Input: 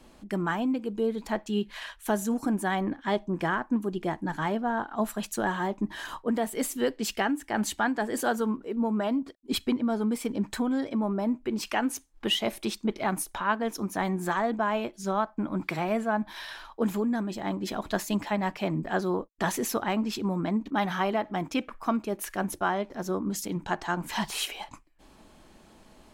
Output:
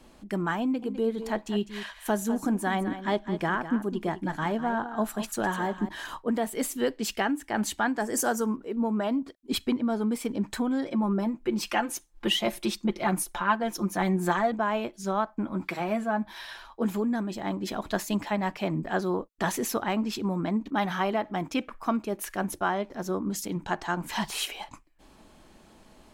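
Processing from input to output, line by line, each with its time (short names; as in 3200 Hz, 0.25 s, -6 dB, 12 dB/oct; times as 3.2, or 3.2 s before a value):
0.62–5.89 echo 0.203 s -11.5 dB
7.98–8.56 resonant high shelf 4700 Hz +6 dB, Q 3
10.85–14.52 comb 5.7 ms
15.45–16.95 notch comb 150 Hz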